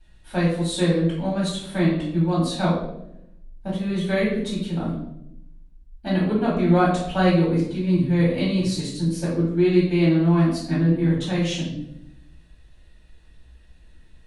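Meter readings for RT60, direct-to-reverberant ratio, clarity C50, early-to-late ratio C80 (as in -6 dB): 0.80 s, -8.0 dB, 2.5 dB, 6.0 dB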